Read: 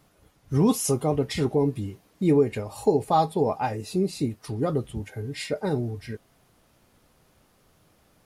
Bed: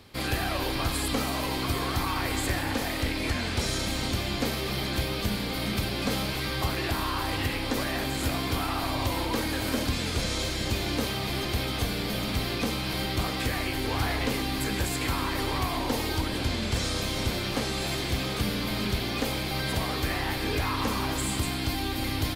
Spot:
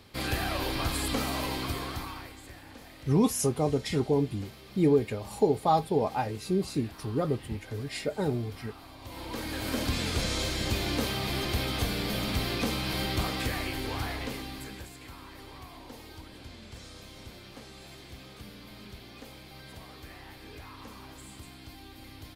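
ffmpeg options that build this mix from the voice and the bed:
ffmpeg -i stem1.wav -i stem2.wav -filter_complex "[0:a]adelay=2550,volume=-3dB[link_01];[1:a]volume=16.5dB,afade=type=out:start_time=1.42:duration=0.93:silence=0.133352,afade=type=in:start_time=9.01:duration=0.96:silence=0.11885,afade=type=out:start_time=13.14:duration=1.79:silence=0.141254[link_02];[link_01][link_02]amix=inputs=2:normalize=0" out.wav

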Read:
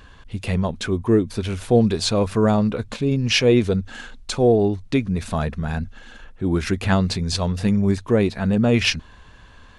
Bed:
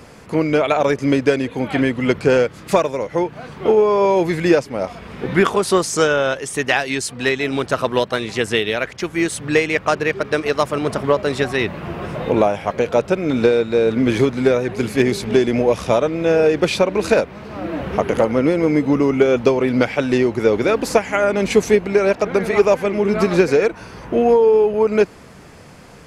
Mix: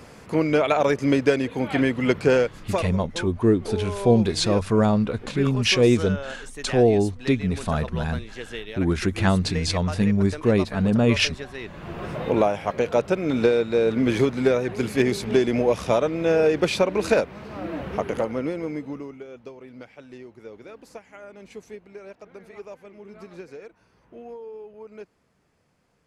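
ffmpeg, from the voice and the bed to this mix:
ffmpeg -i stem1.wav -i stem2.wav -filter_complex "[0:a]adelay=2350,volume=-1.5dB[link_01];[1:a]volume=8.5dB,afade=type=out:start_time=2.3:duration=0.7:silence=0.223872,afade=type=in:start_time=11.62:duration=0.47:silence=0.251189,afade=type=out:start_time=17.42:duration=1.78:silence=0.0841395[link_02];[link_01][link_02]amix=inputs=2:normalize=0" out.wav

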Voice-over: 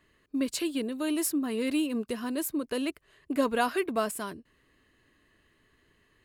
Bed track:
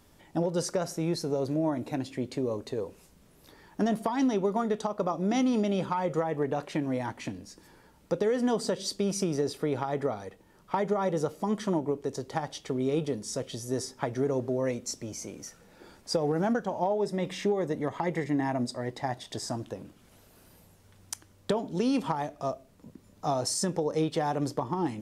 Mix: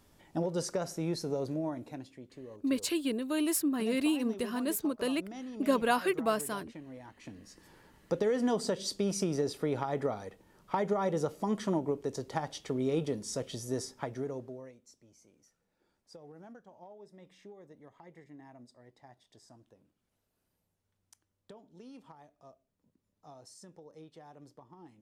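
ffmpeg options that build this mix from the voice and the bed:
ffmpeg -i stem1.wav -i stem2.wav -filter_complex "[0:a]adelay=2300,volume=-1dB[link_01];[1:a]volume=10.5dB,afade=type=out:start_time=1.34:duration=0.87:silence=0.223872,afade=type=in:start_time=7.15:duration=0.59:silence=0.188365,afade=type=out:start_time=13.64:duration=1.08:silence=0.0841395[link_02];[link_01][link_02]amix=inputs=2:normalize=0" out.wav

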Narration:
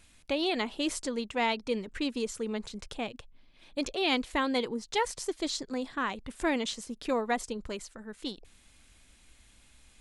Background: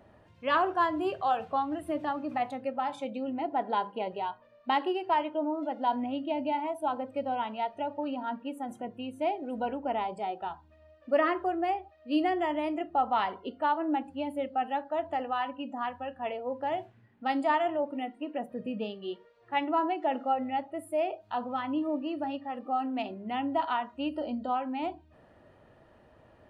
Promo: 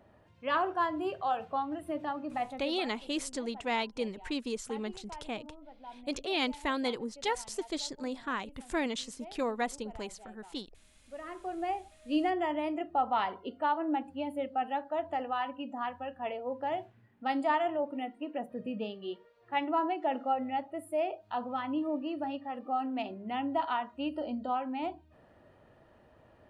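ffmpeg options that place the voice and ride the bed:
ffmpeg -i stem1.wav -i stem2.wav -filter_complex "[0:a]adelay=2300,volume=-3dB[link_01];[1:a]volume=14dB,afade=type=out:start_time=2.45:duration=0.47:silence=0.158489,afade=type=in:start_time=11.23:duration=0.61:silence=0.133352[link_02];[link_01][link_02]amix=inputs=2:normalize=0" out.wav

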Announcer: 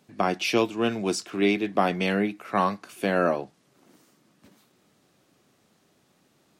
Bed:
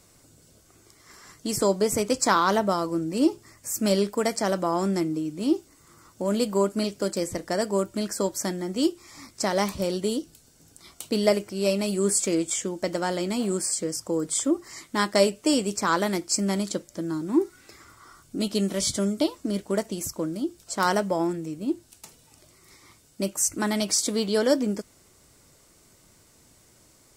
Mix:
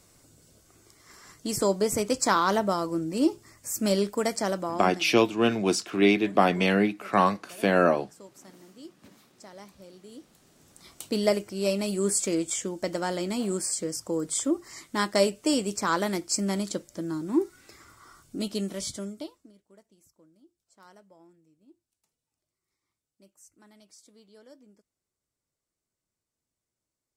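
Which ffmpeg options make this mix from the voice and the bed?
ffmpeg -i stem1.wav -i stem2.wav -filter_complex "[0:a]adelay=4600,volume=2dB[link_01];[1:a]volume=18dB,afade=type=out:start_time=4.41:duration=0.66:silence=0.0944061,afade=type=in:start_time=10.1:duration=0.75:silence=0.1,afade=type=out:start_time=18.18:duration=1.35:silence=0.0375837[link_02];[link_01][link_02]amix=inputs=2:normalize=0" out.wav

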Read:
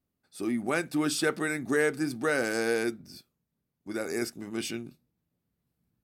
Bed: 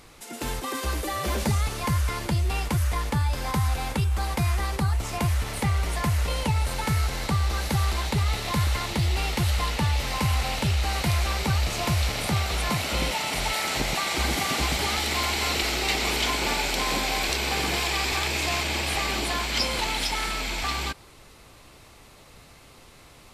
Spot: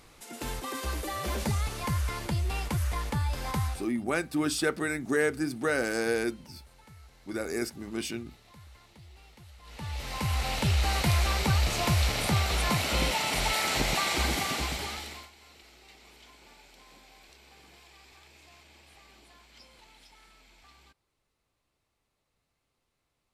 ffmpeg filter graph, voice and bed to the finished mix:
ffmpeg -i stem1.wav -i stem2.wav -filter_complex "[0:a]adelay=3400,volume=-0.5dB[link_01];[1:a]volume=22dB,afade=type=out:start_time=3.62:duration=0.25:silence=0.0707946,afade=type=in:start_time=9.63:duration=1.15:silence=0.0446684,afade=type=out:start_time=14.05:duration=1.25:silence=0.0375837[link_02];[link_01][link_02]amix=inputs=2:normalize=0" out.wav

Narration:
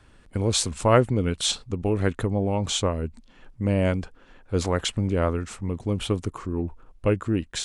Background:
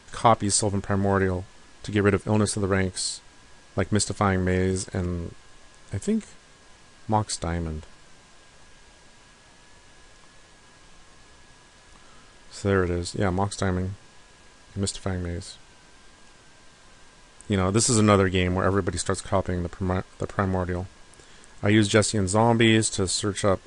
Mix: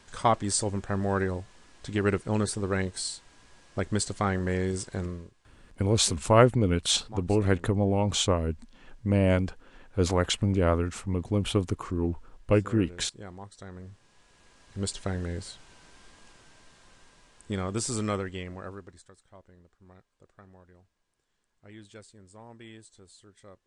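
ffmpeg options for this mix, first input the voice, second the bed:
ffmpeg -i stem1.wav -i stem2.wav -filter_complex "[0:a]adelay=5450,volume=-0.5dB[link_01];[1:a]volume=11.5dB,afade=type=out:start_time=5.04:duration=0.28:silence=0.199526,afade=type=in:start_time=13.71:duration=1.47:silence=0.149624,afade=type=out:start_time=16.07:duration=2.99:silence=0.0473151[link_02];[link_01][link_02]amix=inputs=2:normalize=0" out.wav

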